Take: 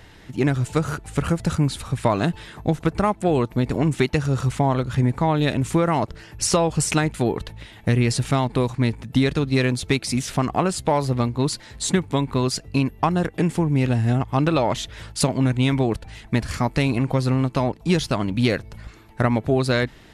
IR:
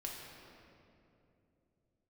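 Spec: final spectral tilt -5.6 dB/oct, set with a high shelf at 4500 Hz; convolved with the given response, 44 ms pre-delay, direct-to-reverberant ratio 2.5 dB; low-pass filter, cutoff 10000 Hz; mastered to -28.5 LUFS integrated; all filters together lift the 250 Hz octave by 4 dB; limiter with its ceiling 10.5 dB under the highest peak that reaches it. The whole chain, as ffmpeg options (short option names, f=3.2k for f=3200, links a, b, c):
-filter_complex "[0:a]lowpass=10k,equalizer=f=250:t=o:g=5,highshelf=f=4.5k:g=5,alimiter=limit=-12.5dB:level=0:latency=1,asplit=2[a][b];[1:a]atrim=start_sample=2205,adelay=44[c];[b][c]afir=irnorm=-1:irlink=0,volume=-1.5dB[d];[a][d]amix=inputs=2:normalize=0,volume=-7dB"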